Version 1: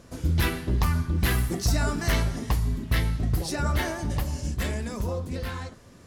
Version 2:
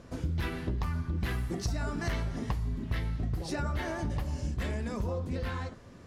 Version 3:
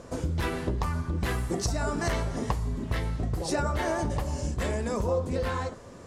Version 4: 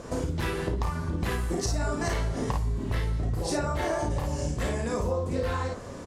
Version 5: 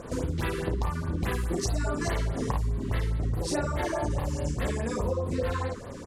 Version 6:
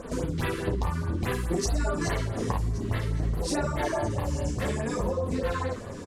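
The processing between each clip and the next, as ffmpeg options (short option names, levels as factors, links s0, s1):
-af "aemphasis=mode=reproduction:type=50kf,acompressor=threshold=0.0355:ratio=6"
-af "equalizer=f=500:t=o:w=1:g=7,equalizer=f=1000:t=o:w=1:g=5,equalizer=f=8000:t=o:w=1:g=10,volume=1.26"
-filter_complex "[0:a]asplit=2[s0][s1];[s1]aecho=0:1:34|54:0.531|0.631[s2];[s0][s2]amix=inputs=2:normalize=0,acompressor=threshold=0.0251:ratio=2.5,volume=1.58"
-af "afftfilt=real='re*(1-between(b*sr/1024,620*pow(7100/620,0.5+0.5*sin(2*PI*4.8*pts/sr))/1.41,620*pow(7100/620,0.5+0.5*sin(2*PI*4.8*pts/sr))*1.41))':imag='im*(1-between(b*sr/1024,620*pow(7100/620,0.5+0.5*sin(2*PI*4.8*pts/sr))/1.41,620*pow(7100/620,0.5+0.5*sin(2*PI*4.8*pts/sr))*1.41))':win_size=1024:overlap=0.75"
-af "flanger=delay=3.7:depth=7.9:regen=-34:speed=0.57:shape=triangular,aecho=1:1:1122:0.112,volume=1.78"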